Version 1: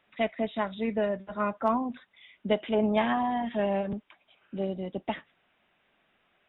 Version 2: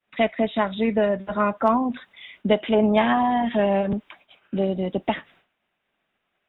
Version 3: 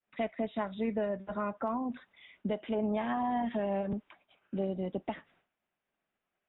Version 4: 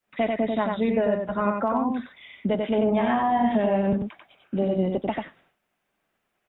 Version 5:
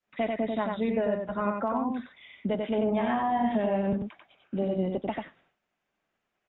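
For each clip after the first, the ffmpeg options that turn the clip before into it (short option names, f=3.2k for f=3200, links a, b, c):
-filter_complex "[0:a]agate=range=-33dB:threshold=-58dB:ratio=3:detection=peak,asplit=2[a][b];[b]acompressor=threshold=-34dB:ratio=6,volume=2.5dB[c];[a][c]amix=inputs=2:normalize=0,volume=4dB"
-af "highshelf=f=3k:g=-10.5,alimiter=limit=-13.5dB:level=0:latency=1:release=249,volume=-9dB"
-af "aecho=1:1:92:0.668,volume=8.5dB"
-af "aresample=16000,aresample=44100,volume=-4.5dB"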